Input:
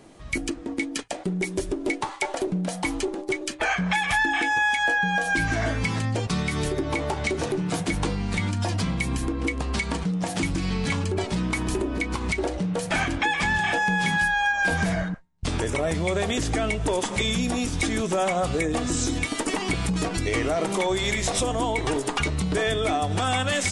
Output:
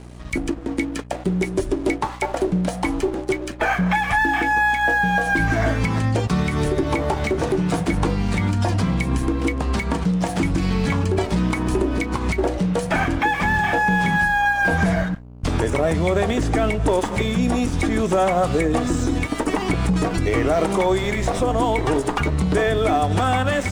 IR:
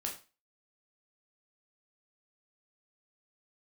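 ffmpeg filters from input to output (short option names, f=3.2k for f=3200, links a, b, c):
-filter_complex "[0:a]acrossover=split=170|1900[a][b][c];[c]acompressor=threshold=-41dB:ratio=6[d];[a][b][d]amix=inputs=3:normalize=0,aeval=exprs='val(0)+0.01*(sin(2*PI*60*n/s)+sin(2*PI*2*60*n/s)/2+sin(2*PI*3*60*n/s)/3+sin(2*PI*4*60*n/s)/4+sin(2*PI*5*60*n/s)/5)':c=same,aeval=exprs='sgn(val(0))*max(abs(val(0))-0.00501,0)':c=same,volume=6.5dB"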